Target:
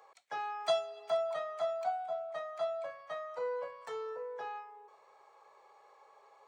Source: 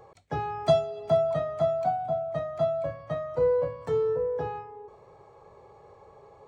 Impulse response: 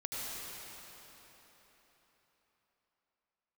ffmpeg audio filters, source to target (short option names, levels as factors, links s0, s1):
-af "highpass=1000,volume=0.891"